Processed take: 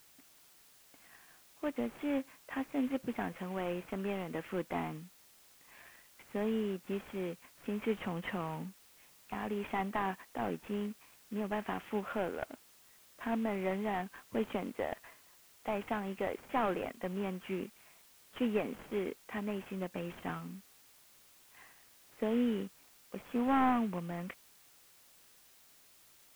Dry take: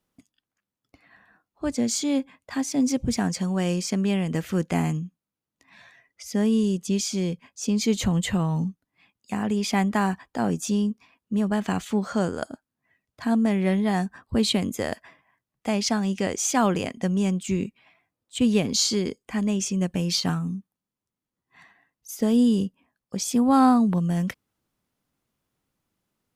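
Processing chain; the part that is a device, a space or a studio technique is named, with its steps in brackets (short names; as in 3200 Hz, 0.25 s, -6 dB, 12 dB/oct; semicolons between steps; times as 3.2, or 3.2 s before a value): army field radio (BPF 330–3300 Hz; CVSD 16 kbps; white noise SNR 24 dB); gain -5.5 dB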